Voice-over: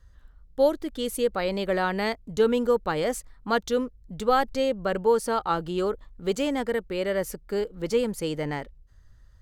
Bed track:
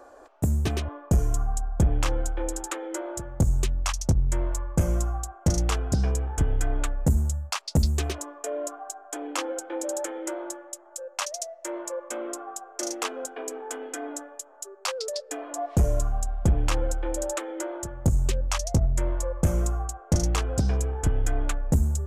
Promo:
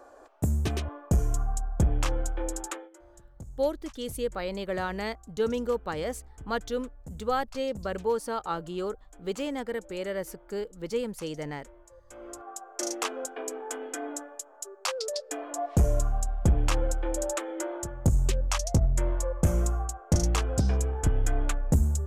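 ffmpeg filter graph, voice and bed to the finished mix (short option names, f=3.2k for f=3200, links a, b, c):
-filter_complex "[0:a]adelay=3000,volume=-6dB[a];[1:a]volume=18.5dB,afade=t=out:st=2.69:d=0.21:silence=0.105925,afade=t=in:st=12.05:d=0.72:silence=0.0891251[b];[a][b]amix=inputs=2:normalize=0"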